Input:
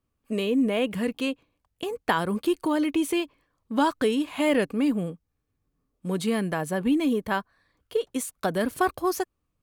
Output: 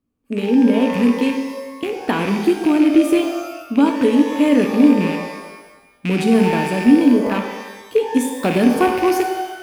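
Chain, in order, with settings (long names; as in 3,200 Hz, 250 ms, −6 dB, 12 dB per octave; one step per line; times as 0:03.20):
loose part that buzzes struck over −42 dBFS, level −19 dBFS
parametric band 260 Hz +12.5 dB 1.3 octaves
automatic gain control
reverb with rising layers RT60 1.1 s, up +12 semitones, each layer −8 dB, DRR 4 dB
level −4 dB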